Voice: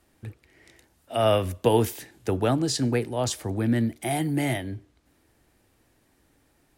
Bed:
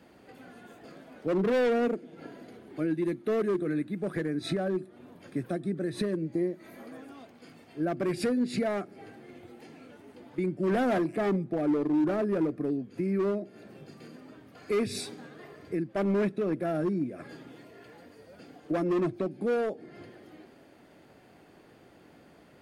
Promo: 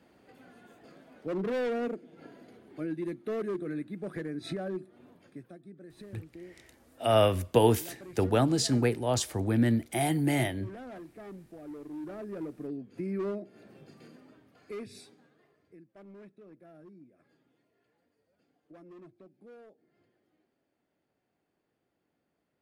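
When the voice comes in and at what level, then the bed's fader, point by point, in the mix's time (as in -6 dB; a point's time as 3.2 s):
5.90 s, -1.5 dB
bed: 5.09 s -5.5 dB
5.56 s -18 dB
11.6 s -18 dB
12.99 s -5 dB
14.08 s -5 dB
15.86 s -24 dB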